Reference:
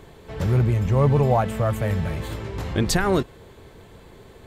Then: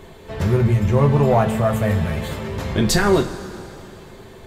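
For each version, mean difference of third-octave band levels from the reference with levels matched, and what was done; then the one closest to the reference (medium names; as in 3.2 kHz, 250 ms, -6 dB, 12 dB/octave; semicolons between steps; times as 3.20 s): 3.0 dB: saturation -9.5 dBFS, distortion -24 dB; two-slope reverb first 0.22 s, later 3 s, from -18 dB, DRR 2 dB; trim +3 dB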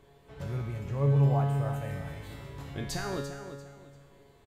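5.0 dB: feedback comb 140 Hz, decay 1.2 s, harmonics all, mix 90%; feedback delay 343 ms, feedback 28%, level -11 dB; trim +2.5 dB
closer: first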